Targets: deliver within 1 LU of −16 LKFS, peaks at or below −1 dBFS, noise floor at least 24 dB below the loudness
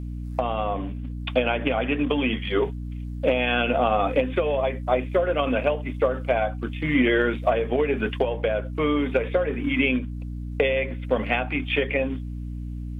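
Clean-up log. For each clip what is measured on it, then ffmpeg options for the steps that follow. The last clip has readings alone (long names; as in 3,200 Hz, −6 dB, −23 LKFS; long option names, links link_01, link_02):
mains hum 60 Hz; hum harmonics up to 300 Hz; level of the hum −30 dBFS; integrated loudness −24.5 LKFS; sample peak −9.0 dBFS; target loudness −16.0 LKFS
→ -af "bandreject=frequency=60:width_type=h:width=4,bandreject=frequency=120:width_type=h:width=4,bandreject=frequency=180:width_type=h:width=4,bandreject=frequency=240:width_type=h:width=4,bandreject=frequency=300:width_type=h:width=4"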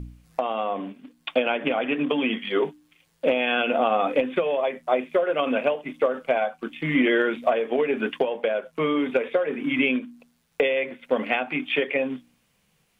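mains hum none found; integrated loudness −24.5 LKFS; sample peak −10.0 dBFS; target loudness −16.0 LKFS
→ -af "volume=8.5dB"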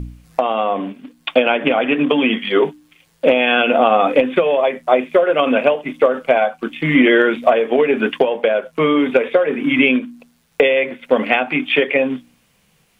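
integrated loudness −16.0 LKFS; sample peak −1.5 dBFS; background noise floor −59 dBFS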